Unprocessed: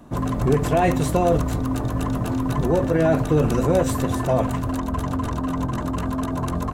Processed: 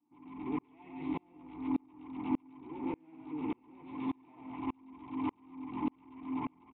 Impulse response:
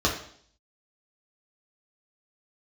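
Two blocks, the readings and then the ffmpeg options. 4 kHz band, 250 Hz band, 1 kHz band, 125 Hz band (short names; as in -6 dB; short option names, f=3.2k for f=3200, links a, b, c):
under -20 dB, -14.0 dB, -18.5 dB, -30.5 dB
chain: -filter_complex "[0:a]tiltshelf=f=810:g=-4,acompressor=threshold=-24dB:ratio=6,aresample=16000,asoftclip=type=tanh:threshold=-29dB,aresample=44100,asplit=3[a][b][c];[a]bandpass=f=300:t=q:w=8,volume=0dB[d];[b]bandpass=f=870:t=q:w=8,volume=-6dB[e];[c]bandpass=f=2.24k:t=q:w=8,volume=-9dB[f];[d][e][f]amix=inputs=3:normalize=0,asplit=2[g][h];[h]aecho=0:1:137:0.668[i];[g][i]amix=inputs=2:normalize=0,aresample=8000,aresample=44100,aeval=exprs='val(0)*pow(10,-36*if(lt(mod(-1.7*n/s,1),2*abs(-1.7)/1000),1-mod(-1.7*n/s,1)/(2*abs(-1.7)/1000),(mod(-1.7*n/s,1)-2*abs(-1.7)/1000)/(1-2*abs(-1.7)/1000))/20)':c=same,volume=11.5dB"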